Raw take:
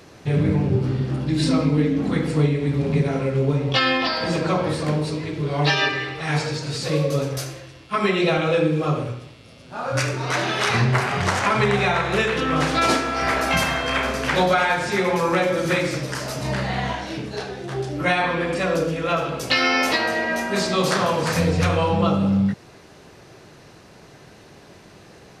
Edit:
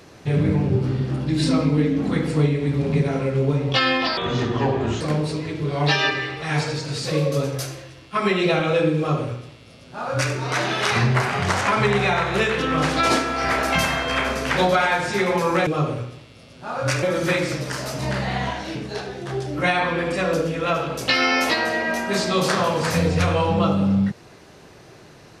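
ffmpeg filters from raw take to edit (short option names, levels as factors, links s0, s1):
-filter_complex "[0:a]asplit=5[s0][s1][s2][s3][s4];[s0]atrim=end=4.174[s5];[s1]atrim=start=4.17:end=4.79,asetpts=PTS-STARTPTS,asetrate=32634,aresample=44100[s6];[s2]atrim=start=4.786:end=15.452[s7];[s3]atrim=start=8.758:end=10.122[s8];[s4]atrim=start=15.448[s9];[s5][s6]acrossfade=d=0.004:c1=hsin:c2=hsin[s10];[s10][s7]acrossfade=d=0.004:c1=hsin:c2=hsin[s11];[s11][s8]acrossfade=d=0.004:c1=hsin:c2=hsin[s12];[s12][s9]acrossfade=d=0.004:c1=hsin:c2=hsin"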